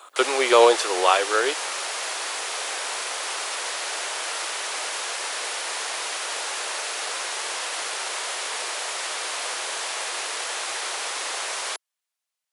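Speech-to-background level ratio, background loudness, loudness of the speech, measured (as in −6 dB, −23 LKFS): 7.5 dB, −27.5 LKFS, −20.0 LKFS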